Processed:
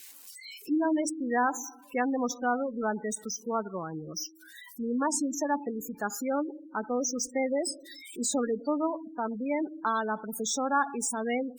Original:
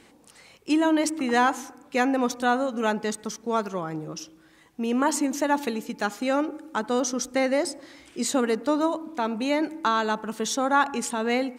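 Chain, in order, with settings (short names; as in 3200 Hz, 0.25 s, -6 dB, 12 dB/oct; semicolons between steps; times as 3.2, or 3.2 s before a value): switching spikes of -20 dBFS; spectral noise reduction 13 dB; spectral gate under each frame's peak -15 dB strong; gain -5 dB; Opus 64 kbps 48000 Hz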